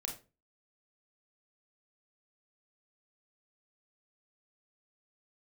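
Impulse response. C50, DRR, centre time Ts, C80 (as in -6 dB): 8.5 dB, 1.5 dB, 20 ms, 15.0 dB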